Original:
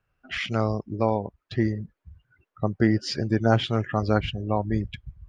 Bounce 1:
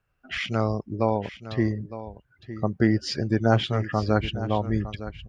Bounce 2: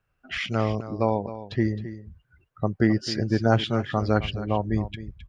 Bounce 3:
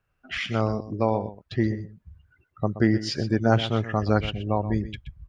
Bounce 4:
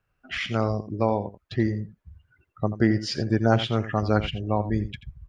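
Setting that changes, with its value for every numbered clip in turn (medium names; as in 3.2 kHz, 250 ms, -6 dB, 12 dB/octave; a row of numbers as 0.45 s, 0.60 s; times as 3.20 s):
delay, time: 910 ms, 265 ms, 125 ms, 85 ms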